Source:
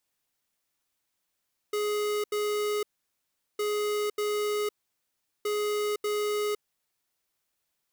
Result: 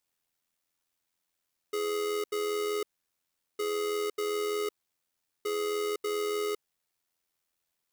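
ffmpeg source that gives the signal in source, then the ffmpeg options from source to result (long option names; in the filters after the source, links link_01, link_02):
-f lavfi -i "aevalsrc='0.0376*(2*lt(mod(418*t,1),0.5)-1)*clip(min(mod(mod(t,1.86),0.59),0.51-mod(mod(t,1.86),0.59))/0.005,0,1)*lt(mod(t,1.86),1.18)':duration=5.58:sample_rate=44100"
-af "tremolo=f=85:d=0.519"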